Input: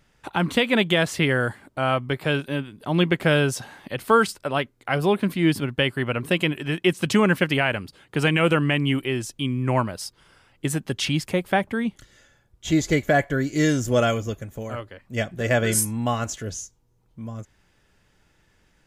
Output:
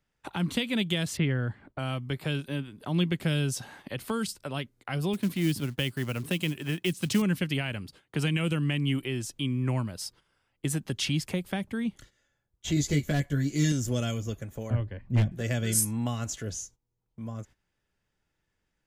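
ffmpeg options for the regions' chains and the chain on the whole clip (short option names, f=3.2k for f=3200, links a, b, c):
-filter_complex "[0:a]asettb=1/sr,asplit=3[a][b][c];[a]atrim=end=1.174[d];[b]atrim=start=1.17:end=1.79,asetpts=PTS-STARTPTS,afade=t=in:d=0.004:c=qsin,afade=t=out:st=0.616:d=0.004:c=qsin,lowpass=2.6k,lowshelf=f=85:g=7.5[e];[c]atrim=start=1.786[f];[d][e]acrossfade=d=0.004:c1=hsin:c2=qsin[g];[g][f]acrossfade=d=0.004:c1=qsin:c2=hsin,asettb=1/sr,asplit=3[h][i][j];[h]atrim=end=5.134[k];[i]atrim=start=5.13:end=7.22,asetpts=PTS-STARTPTS,afade=t=in:d=0.004:c=qsin,afade=t=out:st=2.086:d=0.004:c=qsin,highpass=46,acrusher=bits=5:mode=log:mix=0:aa=0.000001[l];[j]atrim=start=7.216[m];[k][l]acrossfade=d=0.004:c1=hsin:c2=qsin[n];[n][m]acrossfade=d=0.004:c1=qsin:c2=hsin,asettb=1/sr,asplit=3[o][p][q];[o]atrim=end=12.754[r];[p]atrim=start=12.75:end=13.72,asetpts=PTS-STARTPTS,afade=t=in:d=0.004:c=qsin,afade=t=out:st=0.966:d=0.004:c=qsin,asplit=2[s][t];[t]adelay=14,volume=-3dB[u];[s][u]amix=inputs=2:normalize=0,atrim=end_sample=42777,aeval=exprs='clip(val(0),-1,0.266)':c=same[v];[q]atrim=start=13.716[w];[r][v]acrossfade=d=0.004:c1=hsin:c2=qsin[x];[x][w]acrossfade=d=0.004:c1=qsin:c2=hsin,asettb=1/sr,asplit=3[y][z][aa];[y]atrim=end=14.704[ab];[z]atrim=start=14.7:end=15.32,asetpts=PTS-STARTPTS,afade=t=in:d=0.004:c=qsin,afade=t=out:st=0.616:d=0.004:c=qsin,bass=f=250:g=14,treble=f=4k:g=-13,bandreject=f=1.3k:w=5.2,aeval=exprs='0.251*(abs(mod(val(0)/0.251+3,4)-2)-1)':c=same[ac];[aa]atrim=start=15.316[ad];[ab][ac]acrossfade=d=0.004:c1=hsin:c2=qsin[ae];[ae][ad]acrossfade=d=0.004:c1=qsin:c2=hsin,agate=range=-14dB:threshold=-47dB:ratio=16:detection=peak,acrossover=split=270|3000[af][ag][ah];[ag]acompressor=threshold=-33dB:ratio=6[ai];[af][ai][ah]amix=inputs=3:normalize=0,volume=-3dB"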